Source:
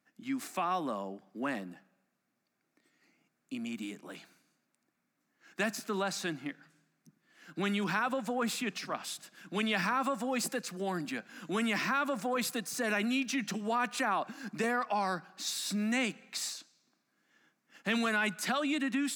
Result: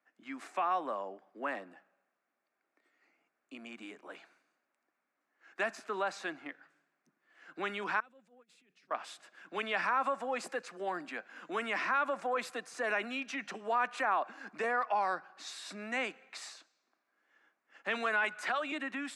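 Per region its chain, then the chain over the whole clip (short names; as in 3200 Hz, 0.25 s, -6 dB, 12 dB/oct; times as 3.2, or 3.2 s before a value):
8–8.91 passive tone stack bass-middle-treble 10-0-1 + negative-ratio compressor -56 dBFS, ratio -0.5
18.24–18.72 low shelf 450 Hz -6 dB + three-band squash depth 70%
whole clip: LPF 10000 Hz 24 dB/oct; three-band isolator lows -23 dB, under 370 Hz, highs -13 dB, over 2500 Hz; gain +1.5 dB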